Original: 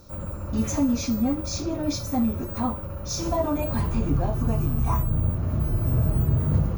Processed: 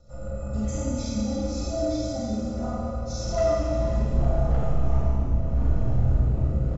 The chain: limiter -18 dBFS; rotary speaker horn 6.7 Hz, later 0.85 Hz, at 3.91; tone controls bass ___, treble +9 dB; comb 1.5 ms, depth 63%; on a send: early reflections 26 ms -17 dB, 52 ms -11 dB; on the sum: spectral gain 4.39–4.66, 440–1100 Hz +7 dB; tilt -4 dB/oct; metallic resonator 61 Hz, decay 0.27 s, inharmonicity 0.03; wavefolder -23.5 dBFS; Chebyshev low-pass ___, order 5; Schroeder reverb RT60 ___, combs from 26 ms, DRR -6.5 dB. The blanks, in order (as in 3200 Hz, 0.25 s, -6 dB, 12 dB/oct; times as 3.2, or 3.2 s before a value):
-13 dB, 7600 Hz, 2.3 s